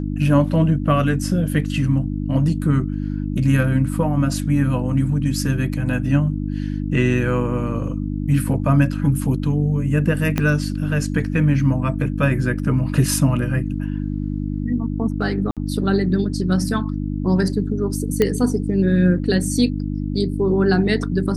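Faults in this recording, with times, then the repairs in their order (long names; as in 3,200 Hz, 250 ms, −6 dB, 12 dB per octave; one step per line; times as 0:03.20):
mains hum 50 Hz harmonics 6 −24 dBFS
0:10.38: click −6 dBFS
0:15.51–0:15.57: drop-out 57 ms
0:18.22: click −5 dBFS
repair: click removal
hum removal 50 Hz, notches 6
repair the gap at 0:15.51, 57 ms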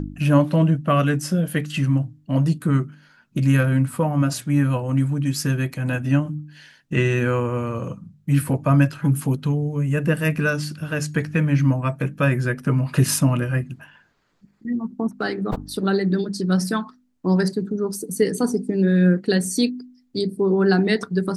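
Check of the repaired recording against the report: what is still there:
0:10.38: click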